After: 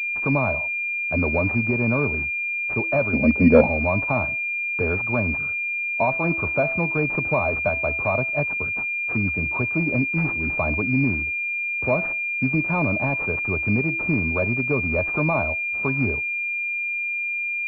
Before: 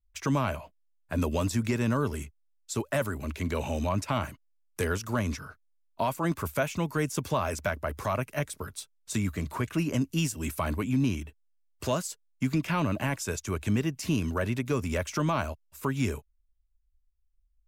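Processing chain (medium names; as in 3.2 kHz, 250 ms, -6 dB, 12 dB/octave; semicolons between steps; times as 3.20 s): de-hum 330.6 Hz, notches 16; dynamic bell 710 Hz, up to +6 dB, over -44 dBFS, Q 1.8; 3.13–3.67 s: small resonant body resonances 230/500 Hz, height 17 dB, ringing for 30 ms; class-D stage that switches slowly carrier 2.4 kHz; trim +4 dB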